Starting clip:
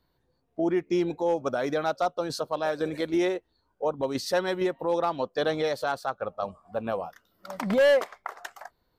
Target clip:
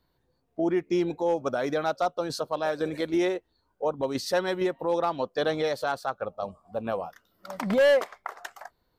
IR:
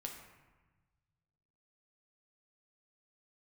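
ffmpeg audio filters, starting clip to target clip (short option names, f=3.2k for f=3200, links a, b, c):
-filter_complex "[0:a]asettb=1/sr,asplit=3[a][b][c];[a]atrim=end=6.254[d];[b]atrim=start=6.25:end=6.85,asetpts=PTS-STARTPTS,afade=t=in:d=0.004:c=qsin,afade=t=out:st=0.596:d=0.004:c=qsin,equalizer=f=1.7k:t=o:w=1.2:g=-8[e];[c]atrim=start=6.846[f];[d][e]acrossfade=d=0.004:c1=hsin:c2=qsin[g];[g][f]acrossfade=d=0.004:c1=qsin:c2=hsin"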